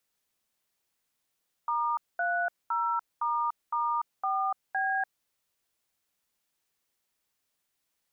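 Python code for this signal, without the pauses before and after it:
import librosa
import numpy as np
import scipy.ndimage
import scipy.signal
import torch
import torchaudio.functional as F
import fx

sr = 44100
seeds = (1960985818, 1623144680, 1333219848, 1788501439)

y = fx.dtmf(sr, digits='*30**4B', tone_ms=292, gap_ms=219, level_db=-28.5)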